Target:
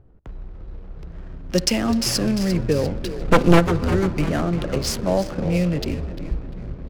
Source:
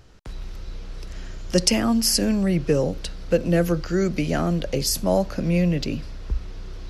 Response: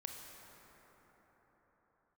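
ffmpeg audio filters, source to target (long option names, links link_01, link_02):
-filter_complex "[0:a]asplit=3[link_01][link_02][link_03];[link_01]afade=type=out:start_time=3.19:duration=0.02[link_04];[link_02]aeval=exprs='0.501*(cos(1*acos(clip(val(0)/0.501,-1,1)))-cos(1*PI/2))+0.126*(cos(5*acos(clip(val(0)/0.501,-1,1)))-cos(5*PI/2))+0.251*(cos(6*acos(clip(val(0)/0.501,-1,1)))-cos(6*PI/2))':channel_layout=same,afade=type=in:start_time=3.19:duration=0.02,afade=type=out:start_time=3.59:duration=0.02[link_05];[link_03]afade=type=in:start_time=3.59:duration=0.02[link_06];[link_04][link_05][link_06]amix=inputs=3:normalize=0,asplit=8[link_07][link_08][link_09][link_10][link_11][link_12][link_13][link_14];[link_08]adelay=348,afreqshift=-99,volume=-10dB[link_15];[link_09]adelay=696,afreqshift=-198,volume=-14.6dB[link_16];[link_10]adelay=1044,afreqshift=-297,volume=-19.2dB[link_17];[link_11]adelay=1392,afreqshift=-396,volume=-23.7dB[link_18];[link_12]adelay=1740,afreqshift=-495,volume=-28.3dB[link_19];[link_13]adelay=2088,afreqshift=-594,volume=-32.9dB[link_20];[link_14]adelay=2436,afreqshift=-693,volume=-37.5dB[link_21];[link_07][link_15][link_16][link_17][link_18][link_19][link_20][link_21]amix=inputs=8:normalize=0,asplit=2[link_22][link_23];[1:a]atrim=start_sample=2205[link_24];[link_23][link_24]afir=irnorm=-1:irlink=0,volume=-6.5dB[link_25];[link_22][link_25]amix=inputs=2:normalize=0,adynamicsmooth=sensitivity=6.5:basefreq=520,volume=-2.5dB"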